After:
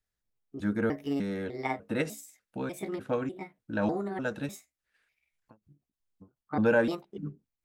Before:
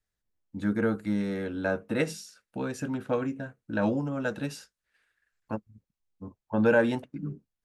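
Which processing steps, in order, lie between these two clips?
pitch shifter gated in a rhythm +5.5 semitones, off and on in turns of 299 ms
every ending faded ahead of time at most 280 dB per second
level −2 dB

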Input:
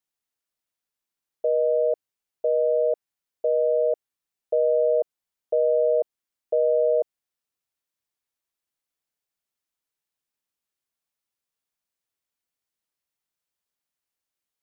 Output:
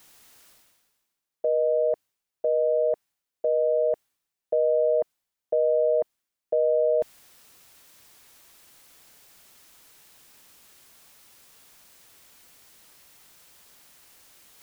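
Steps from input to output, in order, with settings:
reversed playback
upward compression, threshold −29 dBFS
reversed playback
dynamic equaliser 410 Hz, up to −4 dB, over −38 dBFS, Q 2.9

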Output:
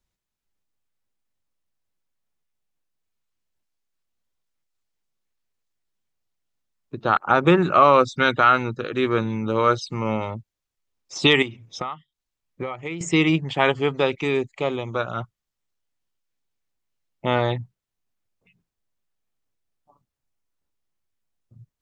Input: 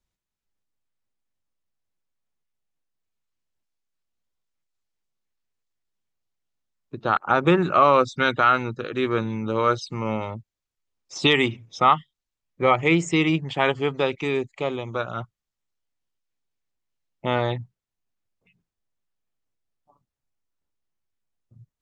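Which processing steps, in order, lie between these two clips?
0:11.42–0:13.01: downward compressor 20 to 1, threshold −29 dBFS, peak gain reduction 18.5 dB
level +2 dB

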